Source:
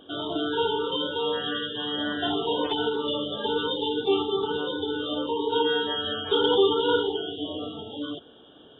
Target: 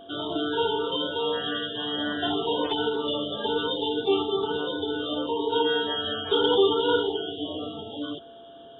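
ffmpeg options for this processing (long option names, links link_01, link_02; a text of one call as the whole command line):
ffmpeg -i in.wav -af "aeval=exprs='val(0)+0.00562*sin(2*PI*680*n/s)':channel_layout=same" out.wav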